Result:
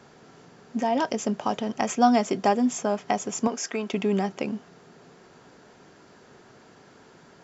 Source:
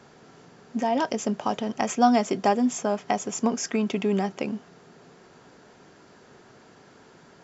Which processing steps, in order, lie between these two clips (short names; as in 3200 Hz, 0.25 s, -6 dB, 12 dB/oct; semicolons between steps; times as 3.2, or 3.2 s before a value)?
3.47–3.94 tone controls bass -13 dB, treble -1 dB